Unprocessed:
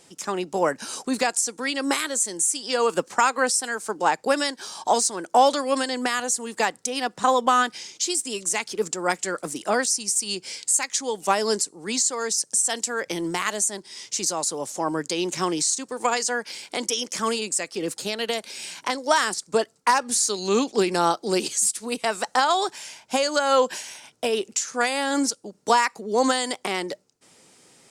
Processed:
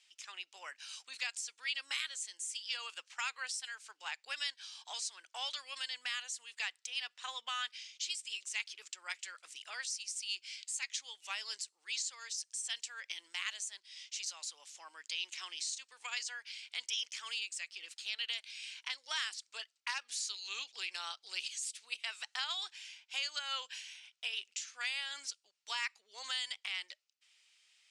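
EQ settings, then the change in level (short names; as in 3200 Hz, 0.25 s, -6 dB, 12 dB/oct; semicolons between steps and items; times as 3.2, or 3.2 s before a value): ladder band-pass 3400 Hz, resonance 40%; tilt +2 dB/oct; high shelf 2600 Hz -12 dB; +5.0 dB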